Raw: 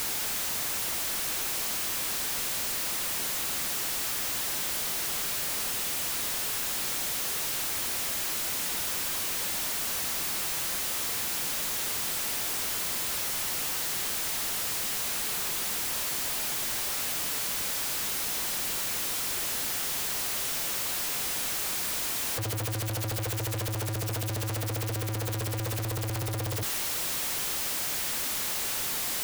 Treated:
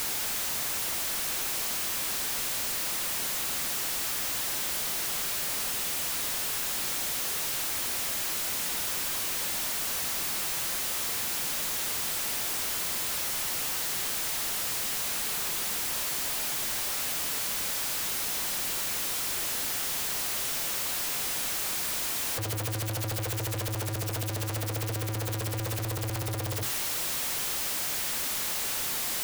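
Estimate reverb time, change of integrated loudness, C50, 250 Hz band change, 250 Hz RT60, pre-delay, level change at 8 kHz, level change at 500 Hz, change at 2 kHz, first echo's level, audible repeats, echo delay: no reverb, 0.0 dB, no reverb, -0.5 dB, no reverb, no reverb, 0.0 dB, -0.5 dB, 0.0 dB, no echo, no echo, no echo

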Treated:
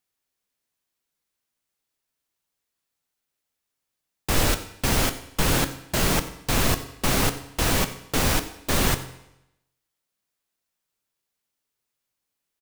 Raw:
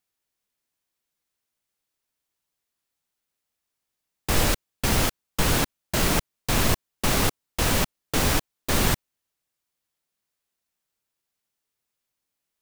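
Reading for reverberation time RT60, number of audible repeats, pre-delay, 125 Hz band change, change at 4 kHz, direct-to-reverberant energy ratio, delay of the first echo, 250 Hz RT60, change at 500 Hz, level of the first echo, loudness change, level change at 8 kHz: 0.85 s, 1, 7 ms, +0.5 dB, +0.5 dB, 9.0 dB, 92 ms, 0.85 s, +0.5 dB, -19.0 dB, +0.5 dB, +0.5 dB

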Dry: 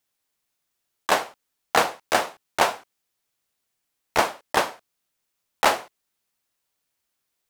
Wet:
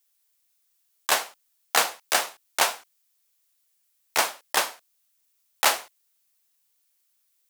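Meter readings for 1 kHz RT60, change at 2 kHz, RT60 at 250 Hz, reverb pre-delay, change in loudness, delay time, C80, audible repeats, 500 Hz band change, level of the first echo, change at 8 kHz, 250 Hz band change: no reverb, -1.0 dB, no reverb, no reverb, -1.0 dB, no echo, no reverb, no echo, -7.0 dB, no echo, +6.0 dB, -10.5 dB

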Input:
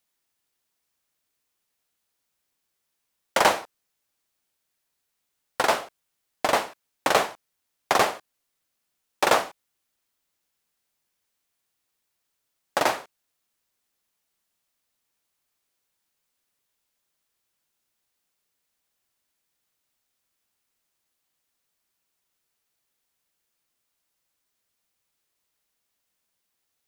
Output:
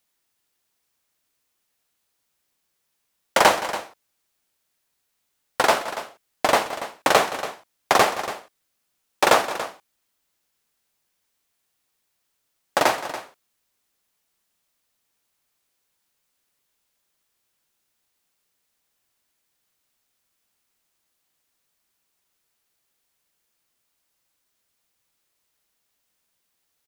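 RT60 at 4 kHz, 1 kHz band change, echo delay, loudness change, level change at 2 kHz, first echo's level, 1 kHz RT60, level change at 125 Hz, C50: no reverb, +4.0 dB, 171 ms, +3.0 dB, +4.0 dB, -16.0 dB, no reverb, +4.0 dB, no reverb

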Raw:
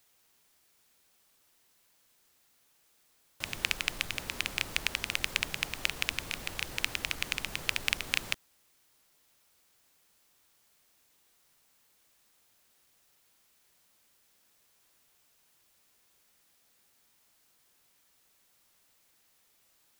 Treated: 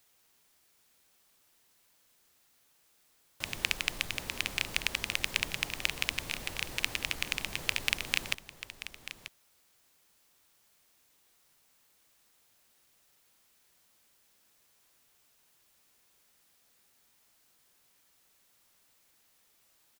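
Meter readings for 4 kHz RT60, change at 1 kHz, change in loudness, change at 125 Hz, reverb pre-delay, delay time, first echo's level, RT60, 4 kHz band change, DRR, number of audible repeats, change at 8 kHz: no reverb, -0.5 dB, -0.5 dB, 0.0 dB, no reverb, 937 ms, -13.0 dB, no reverb, 0.0 dB, no reverb, 1, 0.0 dB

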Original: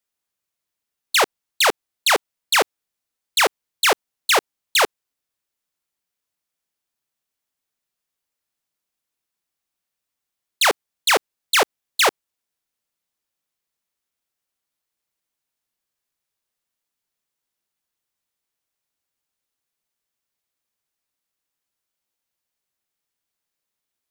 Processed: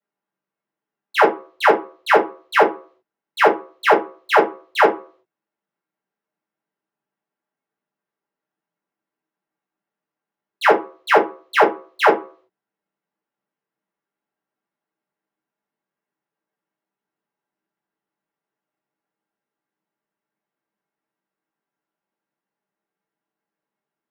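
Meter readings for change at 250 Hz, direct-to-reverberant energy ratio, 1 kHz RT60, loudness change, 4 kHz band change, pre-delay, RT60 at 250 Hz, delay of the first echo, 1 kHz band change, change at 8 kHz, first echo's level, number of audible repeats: +9.0 dB, -7.5 dB, 0.40 s, +1.5 dB, -10.0 dB, 3 ms, 0.30 s, no echo, +5.5 dB, under -15 dB, no echo, no echo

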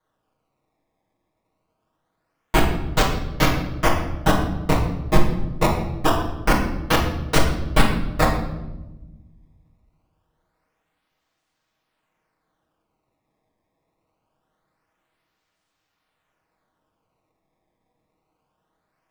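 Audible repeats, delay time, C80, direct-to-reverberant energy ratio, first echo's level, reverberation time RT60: no echo, no echo, 8.0 dB, -6.0 dB, no echo, 1.1 s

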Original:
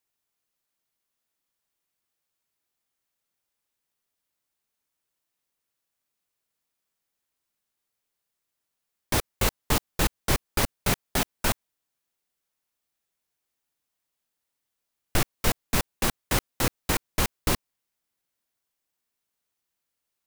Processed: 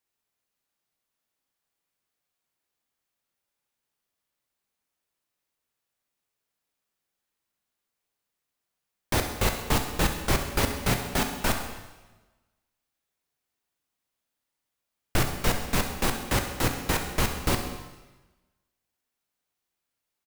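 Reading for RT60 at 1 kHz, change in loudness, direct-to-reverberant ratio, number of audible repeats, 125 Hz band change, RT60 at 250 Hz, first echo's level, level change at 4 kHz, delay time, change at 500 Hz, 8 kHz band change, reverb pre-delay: 1.2 s, 0.0 dB, 4.5 dB, 2, +1.5 dB, 1.2 s, -12.5 dB, -0.5 dB, 66 ms, +1.0 dB, -2.0 dB, 7 ms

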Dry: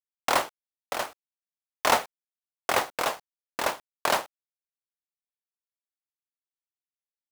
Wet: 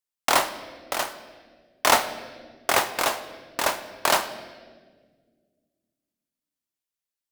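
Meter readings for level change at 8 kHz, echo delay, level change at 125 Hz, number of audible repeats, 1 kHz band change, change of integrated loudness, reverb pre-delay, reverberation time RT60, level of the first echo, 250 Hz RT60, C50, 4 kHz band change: +6.5 dB, no echo, +3.0 dB, no echo, +3.0 dB, +3.5 dB, 3 ms, 1.6 s, no echo, 2.5 s, 11.5 dB, +5.5 dB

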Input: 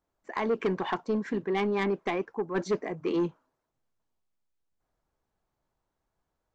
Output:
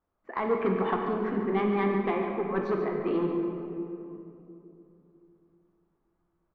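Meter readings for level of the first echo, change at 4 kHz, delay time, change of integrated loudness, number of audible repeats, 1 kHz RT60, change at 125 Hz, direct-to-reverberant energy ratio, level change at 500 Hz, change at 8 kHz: -9.0 dB, -6.0 dB, 143 ms, +1.5 dB, 1, 2.7 s, +3.0 dB, 1.0 dB, +2.0 dB, no reading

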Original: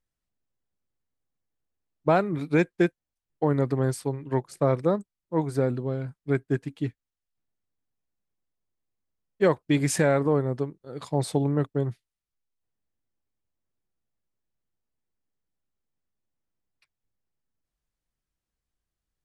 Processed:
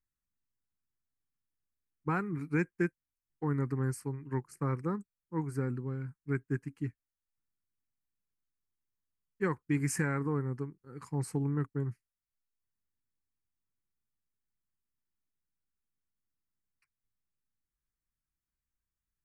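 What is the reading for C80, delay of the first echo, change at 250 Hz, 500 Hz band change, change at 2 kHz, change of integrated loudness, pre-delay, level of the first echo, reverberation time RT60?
no reverb, no echo, -7.5 dB, -13.5 dB, -6.0 dB, -8.5 dB, no reverb, no echo, no reverb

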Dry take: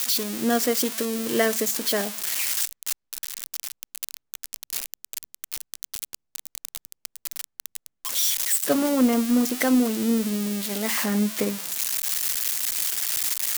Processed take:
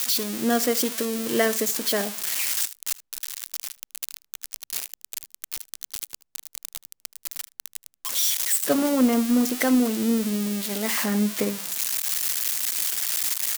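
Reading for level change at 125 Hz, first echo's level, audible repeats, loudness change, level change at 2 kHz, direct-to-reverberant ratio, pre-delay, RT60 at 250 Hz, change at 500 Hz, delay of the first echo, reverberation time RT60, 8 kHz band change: no reading, -20.0 dB, 1, 0.0 dB, 0.0 dB, no reverb, no reverb, no reverb, 0.0 dB, 77 ms, no reverb, 0.0 dB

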